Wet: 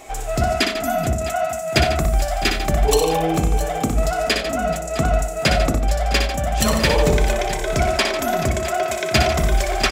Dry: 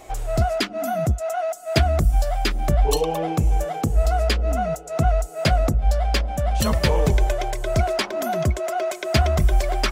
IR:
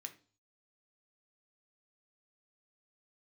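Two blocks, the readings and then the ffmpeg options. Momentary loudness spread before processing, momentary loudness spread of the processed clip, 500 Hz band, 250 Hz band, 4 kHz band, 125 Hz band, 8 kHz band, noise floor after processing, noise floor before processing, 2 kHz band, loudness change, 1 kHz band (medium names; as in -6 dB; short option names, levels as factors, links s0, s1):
5 LU, 5 LU, +3.5 dB, +3.5 dB, +6.0 dB, -1.0 dB, +7.0 dB, -26 dBFS, -37 dBFS, +7.0 dB, +2.5 dB, +3.5 dB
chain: -filter_complex "[0:a]aecho=1:1:61|93|147|432|658:0.531|0.2|0.282|0.119|0.188,asplit=2[s0][s1];[1:a]atrim=start_sample=2205,highshelf=f=9600:g=-5.5[s2];[s1][s2]afir=irnorm=-1:irlink=0,volume=1.88[s3];[s0][s3]amix=inputs=2:normalize=0,volume=0.891"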